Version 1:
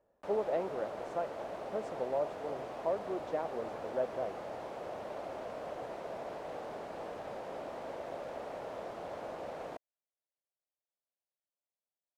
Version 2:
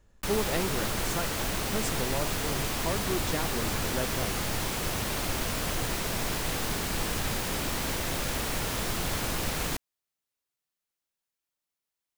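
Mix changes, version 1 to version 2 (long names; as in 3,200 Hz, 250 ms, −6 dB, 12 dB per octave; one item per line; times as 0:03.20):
speech −4.0 dB
master: remove resonant band-pass 610 Hz, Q 2.8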